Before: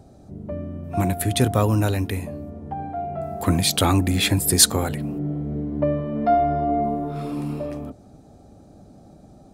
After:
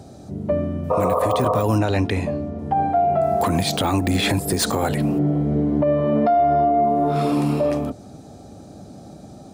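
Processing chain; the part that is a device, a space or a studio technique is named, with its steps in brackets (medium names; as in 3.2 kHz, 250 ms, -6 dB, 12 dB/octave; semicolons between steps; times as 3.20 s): 0.94–1.58 s: spectral replace 420–1300 Hz after; 1.78–2.59 s: distance through air 94 m; dynamic bell 730 Hz, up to +7 dB, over -36 dBFS, Q 0.74; broadcast voice chain (high-pass 77 Hz 12 dB/octave; de-esser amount 65%; compression 5:1, threshold -22 dBFS, peak gain reduction 13 dB; peaking EQ 5 kHz +5 dB 2.3 oct; peak limiter -18 dBFS, peak gain reduction 8.5 dB); trim +7.5 dB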